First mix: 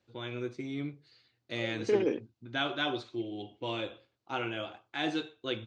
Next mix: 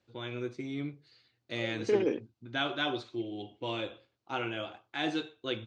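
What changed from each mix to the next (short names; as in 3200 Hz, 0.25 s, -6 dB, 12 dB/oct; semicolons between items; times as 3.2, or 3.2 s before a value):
none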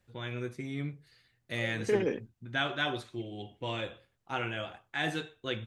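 master: remove speaker cabinet 120–6400 Hz, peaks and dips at 170 Hz -9 dB, 320 Hz +6 dB, 1800 Hz -7 dB, 4300 Hz +4 dB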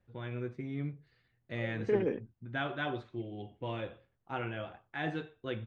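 master: add tape spacing loss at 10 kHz 31 dB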